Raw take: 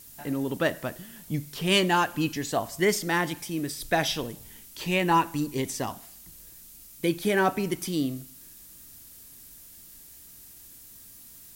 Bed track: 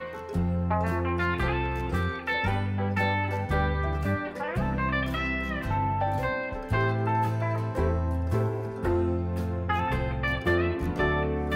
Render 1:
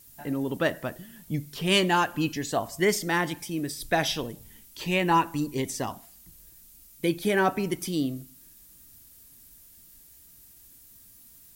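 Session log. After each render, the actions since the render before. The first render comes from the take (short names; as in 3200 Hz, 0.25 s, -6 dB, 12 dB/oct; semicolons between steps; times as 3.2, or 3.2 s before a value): denoiser 6 dB, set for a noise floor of -49 dBFS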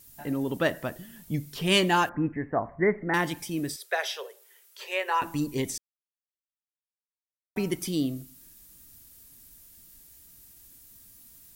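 2.09–3.14 steep low-pass 2100 Hz 72 dB/oct; 3.76–5.22 rippled Chebyshev high-pass 380 Hz, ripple 6 dB; 5.78–7.56 mute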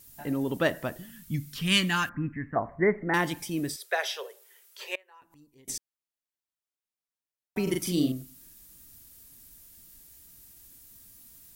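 1.1–2.56 band shelf 560 Hz -13.5 dB; 4.95–5.68 flipped gate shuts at -29 dBFS, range -29 dB; 7.63–8.12 doubler 40 ms -3 dB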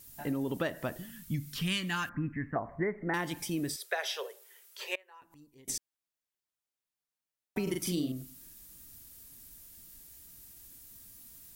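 compressor 6:1, threshold -29 dBFS, peak gain reduction 11.5 dB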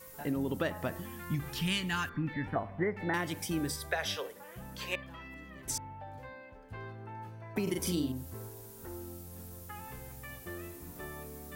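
add bed track -19 dB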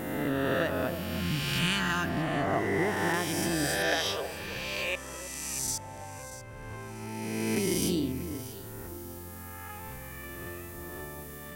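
spectral swells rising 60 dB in 2.19 s; echo with dull and thin repeats by turns 0.318 s, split 1100 Hz, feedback 51%, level -9 dB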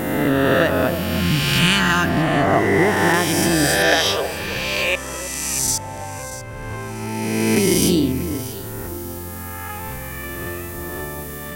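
gain +12 dB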